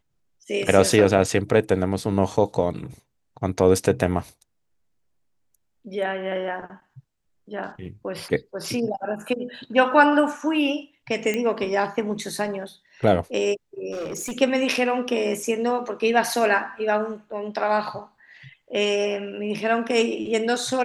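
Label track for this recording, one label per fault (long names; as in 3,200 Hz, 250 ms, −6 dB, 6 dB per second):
11.340000	11.340000	click −13 dBFS
13.910000	14.320000	clipping −26.5 dBFS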